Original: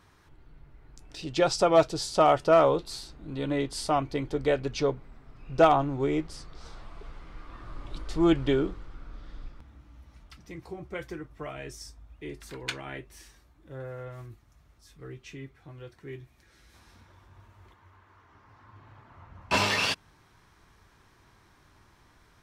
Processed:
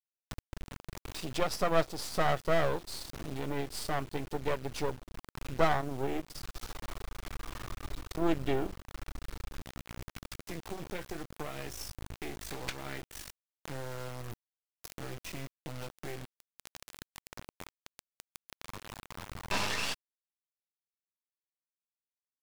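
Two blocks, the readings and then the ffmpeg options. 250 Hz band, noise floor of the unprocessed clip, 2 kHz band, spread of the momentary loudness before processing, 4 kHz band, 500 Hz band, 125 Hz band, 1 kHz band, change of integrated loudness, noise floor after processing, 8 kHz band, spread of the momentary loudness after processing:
−8.0 dB, −61 dBFS, −4.0 dB, 24 LU, −5.5 dB, −8.5 dB, −4.0 dB, −7.5 dB, −10.0 dB, below −85 dBFS, −3.0 dB, 19 LU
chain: -af "aeval=exprs='max(val(0),0)':channel_layout=same,acrusher=bits=5:dc=4:mix=0:aa=0.000001,acompressor=mode=upward:threshold=-27dB:ratio=2.5,volume=-3dB"

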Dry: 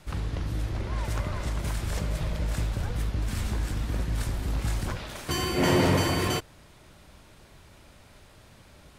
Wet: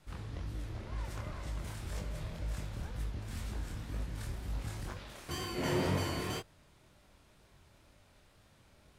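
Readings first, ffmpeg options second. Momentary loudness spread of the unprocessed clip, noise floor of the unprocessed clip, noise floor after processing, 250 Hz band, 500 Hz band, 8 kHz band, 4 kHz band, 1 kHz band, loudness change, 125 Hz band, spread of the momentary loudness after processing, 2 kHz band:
9 LU, −54 dBFS, −64 dBFS, −10.5 dB, −10.0 dB, −10.5 dB, −10.5 dB, −10.5 dB, −10.5 dB, −10.0 dB, 10 LU, −10.5 dB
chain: -af "flanger=delay=20:depth=8:speed=2,volume=-7.5dB"

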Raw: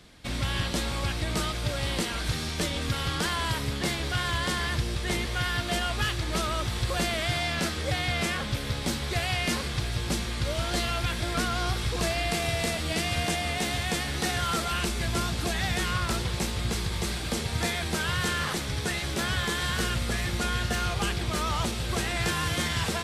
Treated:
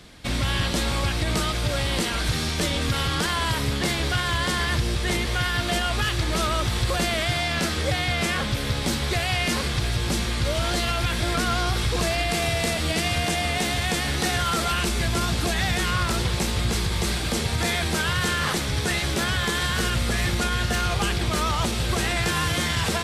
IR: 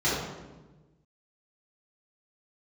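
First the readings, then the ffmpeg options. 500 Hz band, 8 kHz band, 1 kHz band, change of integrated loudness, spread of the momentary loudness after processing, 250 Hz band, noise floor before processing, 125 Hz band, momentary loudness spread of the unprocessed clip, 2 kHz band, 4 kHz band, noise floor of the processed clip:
+4.5 dB, +4.5 dB, +4.5 dB, +4.5 dB, 2 LU, +4.5 dB, −33 dBFS, +4.5 dB, 3 LU, +4.5 dB, +4.5 dB, −27 dBFS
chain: -af "alimiter=limit=-20dB:level=0:latency=1,volume=6dB"

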